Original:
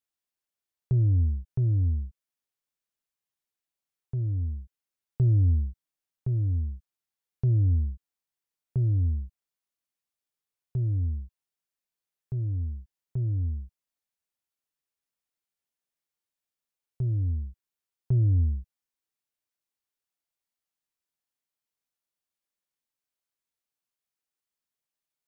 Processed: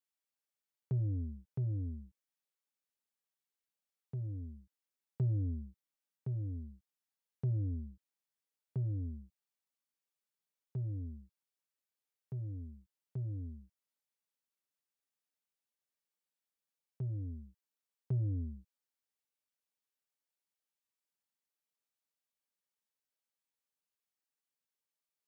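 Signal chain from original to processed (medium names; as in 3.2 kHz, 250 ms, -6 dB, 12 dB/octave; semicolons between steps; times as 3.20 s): high-pass 170 Hz 12 dB/octave; comb of notches 350 Hz; trim -3 dB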